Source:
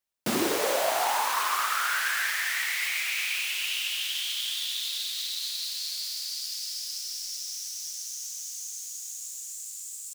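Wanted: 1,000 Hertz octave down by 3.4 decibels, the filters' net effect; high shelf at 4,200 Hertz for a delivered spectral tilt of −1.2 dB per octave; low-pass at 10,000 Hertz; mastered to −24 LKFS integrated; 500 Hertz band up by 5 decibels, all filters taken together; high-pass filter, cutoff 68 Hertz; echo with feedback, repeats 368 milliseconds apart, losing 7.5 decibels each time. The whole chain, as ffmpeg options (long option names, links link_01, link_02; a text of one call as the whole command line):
ffmpeg -i in.wav -af "highpass=68,lowpass=10000,equalizer=frequency=500:width_type=o:gain=8.5,equalizer=frequency=1000:width_type=o:gain=-7,highshelf=frequency=4200:gain=-5.5,aecho=1:1:368|736|1104|1472|1840:0.422|0.177|0.0744|0.0312|0.0131,volume=6dB" out.wav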